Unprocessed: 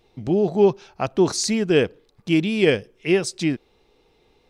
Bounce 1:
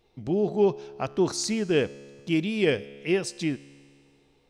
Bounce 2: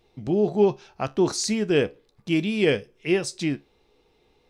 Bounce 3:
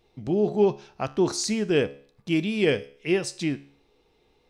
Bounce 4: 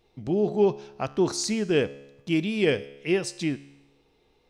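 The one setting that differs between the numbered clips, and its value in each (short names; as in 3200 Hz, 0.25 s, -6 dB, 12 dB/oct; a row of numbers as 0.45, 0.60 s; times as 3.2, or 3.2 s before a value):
resonator, decay: 2.2, 0.21, 0.5, 1 s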